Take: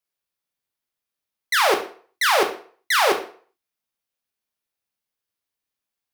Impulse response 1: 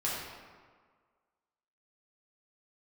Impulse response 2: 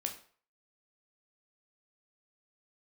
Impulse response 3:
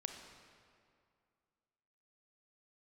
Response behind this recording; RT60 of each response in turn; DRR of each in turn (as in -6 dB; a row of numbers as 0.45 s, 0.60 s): 2; 1.6 s, 0.45 s, 2.3 s; -7.0 dB, 3.0 dB, 4.5 dB